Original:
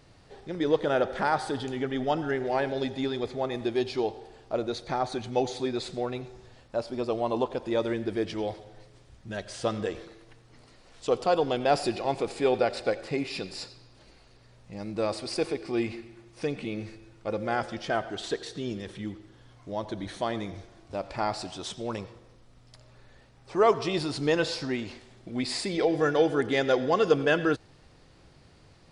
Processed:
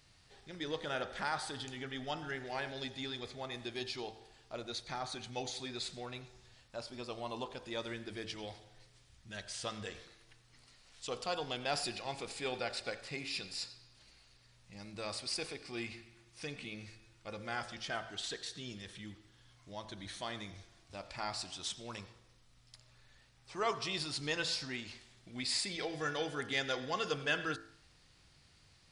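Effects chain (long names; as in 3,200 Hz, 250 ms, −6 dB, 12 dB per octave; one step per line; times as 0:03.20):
guitar amp tone stack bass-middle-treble 5-5-5
hum removal 55.35 Hz, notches 33
level +5 dB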